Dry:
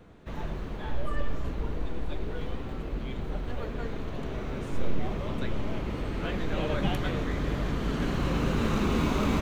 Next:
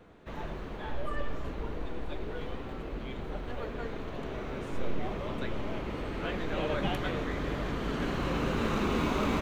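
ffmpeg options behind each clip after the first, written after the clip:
ffmpeg -i in.wav -af "bass=frequency=250:gain=-6,treble=frequency=4000:gain=-4" out.wav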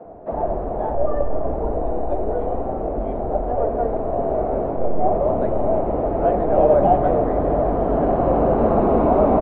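ffmpeg -i in.wav -filter_complex "[0:a]asplit=2[link_01][link_02];[link_02]asoftclip=type=hard:threshold=-28.5dB,volume=-3.5dB[link_03];[link_01][link_03]amix=inputs=2:normalize=0,lowpass=frequency=690:width_type=q:width=5.1,acrossover=split=150[link_04][link_05];[link_04]adelay=50[link_06];[link_06][link_05]amix=inputs=2:normalize=0,volume=7dB" out.wav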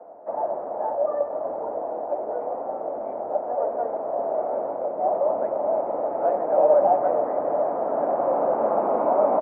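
ffmpeg -i in.wav -af "highpass=350,equalizer=frequency=400:width_type=q:width=4:gain=-4,equalizer=frequency=570:width_type=q:width=4:gain=7,equalizer=frequency=890:width_type=q:width=4:gain=7,equalizer=frequency=1300:width_type=q:width=4:gain=3,lowpass=frequency=2300:width=0.5412,lowpass=frequency=2300:width=1.3066,volume=-7dB" out.wav

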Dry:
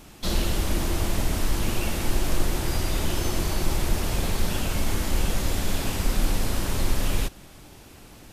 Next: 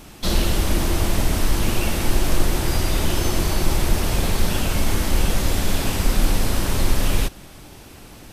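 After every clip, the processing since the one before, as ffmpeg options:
ffmpeg -i in.wav -af "bandreject=frequency=7000:width=28,volume=5dB" out.wav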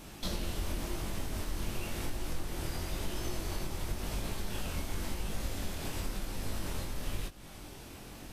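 ffmpeg -i in.wav -af "acompressor=threshold=-29dB:ratio=3,flanger=delay=19:depth=5.3:speed=0.94,volume=-2.5dB" out.wav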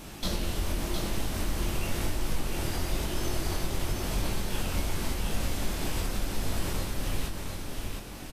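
ffmpeg -i in.wav -af "aecho=1:1:711:0.562,volume=5dB" out.wav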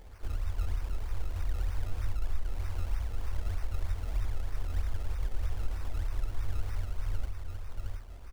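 ffmpeg -i in.wav -af "afftfilt=real='re*(1-between(b*sr/4096,100,12000))':imag='im*(1-between(b*sr/4096,100,12000))':win_size=4096:overlap=0.75,bandreject=frequency=68.03:width_type=h:width=4,bandreject=frequency=136.06:width_type=h:width=4,bandreject=frequency=204.09:width_type=h:width=4,bandreject=frequency=272.12:width_type=h:width=4,bandreject=frequency=340.15:width_type=h:width=4,bandreject=frequency=408.18:width_type=h:width=4,bandreject=frequency=476.21:width_type=h:width=4,bandreject=frequency=544.24:width_type=h:width=4,bandreject=frequency=612.27:width_type=h:width=4,bandreject=frequency=680.3:width_type=h:width=4,bandreject=frequency=748.33:width_type=h:width=4,bandreject=frequency=816.36:width_type=h:width=4,bandreject=frequency=884.39:width_type=h:width=4,bandreject=frequency=952.42:width_type=h:width=4,bandreject=frequency=1020.45:width_type=h:width=4,bandreject=frequency=1088.48:width_type=h:width=4,bandreject=frequency=1156.51:width_type=h:width=4,bandreject=frequency=1224.54:width_type=h:width=4,bandreject=frequency=1292.57:width_type=h:width=4,bandreject=frequency=1360.6:width_type=h:width=4,bandreject=frequency=1428.63:width_type=h:width=4,bandreject=frequency=1496.66:width_type=h:width=4,bandreject=frequency=1564.69:width_type=h:width=4,bandreject=frequency=1632.72:width_type=h:width=4,bandreject=frequency=1700.75:width_type=h:width=4,bandreject=frequency=1768.78:width_type=h:width=4,bandreject=frequency=1836.81:width_type=h:width=4,bandreject=frequency=1904.84:width_type=h:width=4,bandreject=frequency=1972.87:width_type=h:width=4,bandreject=frequency=2040.9:width_type=h:width=4,bandreject=frequency=2108.93:width_type=h:width=4,bandreject=frequency=2176.96:width_type=h:width=4,bandreject=frequency=2244.99:width_type=h:width=4,bandreject=frequency=2313.02:width_type=h:width=4,acrusher=samples=23:mix=1:aa=0.000001:lfo=1:lforange=23:lforate=3.2" out.wav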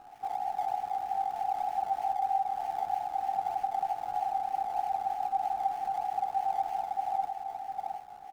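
ffmpeg -i in.wav -af "aeval=exprs='val(0)*sin(2*PI*780*n/s)':channel_layout=same" out.wav

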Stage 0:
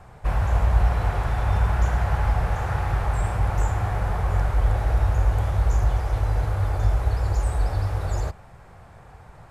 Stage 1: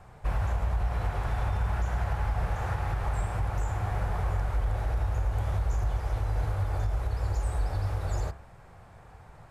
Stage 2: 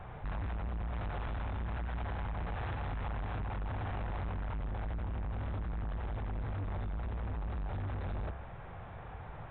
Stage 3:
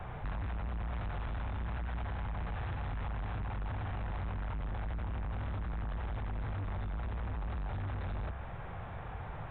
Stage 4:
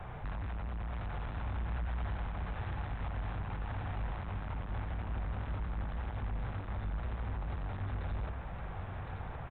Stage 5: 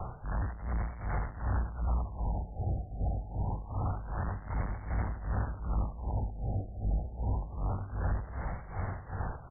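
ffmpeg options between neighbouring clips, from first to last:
ffmpeg -i in.wav -af "bandreject=frequency=67.54:width_type=h:width=4,bandreject=frequency=135.08:width_type=h:width=4,bandreject=frequency=202.62:width_type=h:width=4,bandreject=frequency=270.16:width_type=h:width=4,bandreject=frequency=337.7:width_type=h:width=4,bandreject=frequency=405.24:width_type=h:width=4,bandreject=frequency=472.78:width_type=h:width=4,bandreject=frequency=540.32:width_type=h:width=4,bandreject=frequency=607.86:width_type=h:width=4,bandreject=frequency=675.4:width_type=h:width=4,bandreject=frequency=742.94:width_type=h:width=4,bandreject=frequency=810.48:width_type=h:width=4,bandreject=frequency=878.02:width_type=h:width=4,bandreject=frequency=945.56:width_type=h:width=4,bandreject=frequency=1013.1:width_type=h:width=4,bandreject=frequency=1080.64:width_type=h:width=4,bandreject=frequency=1148.18:width_type=h:width=4,bandreject=frequency=1215.72:width_type=h:width=4,bandreject=frequency=1283.26:width_type=h:width=4,bandreject=frequency=1350.8:width_type=h:width=4,bandreject=frequency=1418.34:width_type=h:width=4,bandreject=frequency=1485.88:width_type=h:width=4,bandreject=frequency=1553.42:width_type=h:width=4,bandreject=frequency=1620.96:width_type=h:width=4,bandreject=frequency=1688.5:width_type=h:width=4,bandreject=frequency=1756.04:width_type=h:width=4,bandreject=frequency=1823.58:width_type=h:width=4,bandreject=frequency=1891.12:width_type=h:width=4,bandreject=frequency=1958.66:width_type=h:width=4,bandreject=frequency=2026.2:width_type=h:width=4,bandreject=frequency=2093.74:width_type=h:width=4,alimiter=limit=-16dB:level=0:latency=1:release=136,volume=-4dB" out.wav
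ffmpeg -i in.wav -af "acompressor=threshold=-33dB:ratio=2.5,aresample=8000,asoftclip=type=tanh:threshold=-40dB,aresample=44100,volume=5.5dB" out.wav
ffmpeg -i in.wav -filter_complex "[0:a]acrossover=split=240|780[link_01][link_02][link_03];[link_01]acompressor=threshold=-40dB:ratio=4[link_04];[link_02]acompressor=threshold=-55dB:ratio=4[link_05];[link_03]acompressor=threshold=-49dB:ratio=4[link_06];[link_04][link_05][link_06]amix=inputs=3:normalize=0,volume=4dB" out.wav
ffmpeg -i in.wav -af "aecho=1:1:1063:0.531,volume=-1.5dB" out.wav
ffmpeg -i in.wav -af "tremolo=f=2.6:d=0.81,afftfilt=real='re*lt(b*sr/1024,800*pow(2300/800,0.5+0.5*sin(2*PI*0.26*pts/sr)))':imag='im*lt(b*sr/1024,800*pow(2300/800,0.5+0.5*sin(2*PI*0.26*pts/sr)))':win_size=1024:overlap=0.75,volume=7.5dB" out.wav

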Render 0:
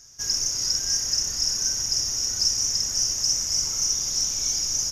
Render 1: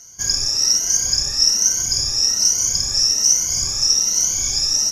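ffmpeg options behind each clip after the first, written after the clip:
ffmpeg -i in.wav -af "afftfilt=real='re*pow(10,17/40*sin(2*PI*(1.9*log(max(b,1)*sr/1024/100)/log(2)-(1.2)*(pts-256)/sr)))':imag='im*pow(10,17/40*sin(2*PI*(1.9*log(max(b,1)*sr/1024/100)/log(2)-(1.2)*(pts-256)/sr)))':win_size=1024:overlap=0.75,volume=3.5dB" out.wav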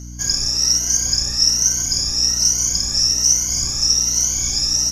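ffmpeg -i in.wav -af "aeval=exprs='val(0)+0.0251*(sin(2*PI*60*n/s)+sin(2*PI*2*60*n/s)/2+sin(2*PI*3*60*n/s)/3+sin(2*PI*4*60*n/s)/4+sin(2*PI*5*60*n/s)/5)':channel_layout=same" out.wav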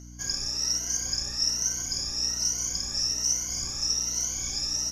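ffmpeg -i in.wav -af "bass=frequency=250:gain=-5,treble=frequency=4000:gain=-5,volume=-7dB" out.wav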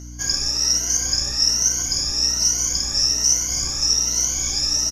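ffmpeg -i in.wav -filter_complex "[0:a]asplit=2[link_01][link_02];[link_02]adelay=14,volume=-9dB[link_03];[link_01][link_03]amix=inputs=2:normalize=0,volume=8dB" out.wav

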